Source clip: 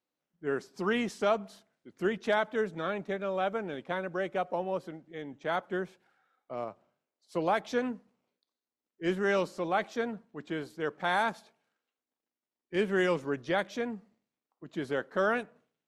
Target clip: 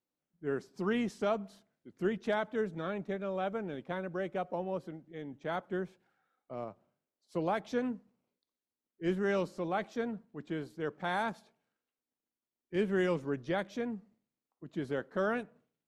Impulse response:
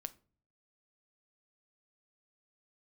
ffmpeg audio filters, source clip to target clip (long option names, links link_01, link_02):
-af "lowshelf=frequency=350:gain=9,volume=-6.5dB"